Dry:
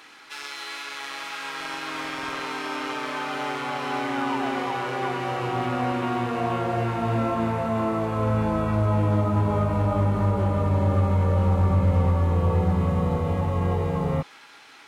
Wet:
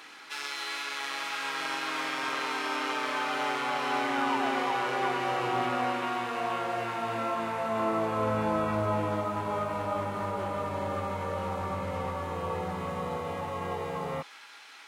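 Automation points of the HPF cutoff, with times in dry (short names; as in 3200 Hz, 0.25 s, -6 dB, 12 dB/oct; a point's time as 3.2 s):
HPF 6 dB/oct
1.51 s 160 Hz
1.97 s 390 Hz
5.58 s 390 Hz
6.15 s 990 Hz
7.55 s 990 Hz
7.97 s 400 Hz
8.89 s 400 Hz
9.3 s 880 Hz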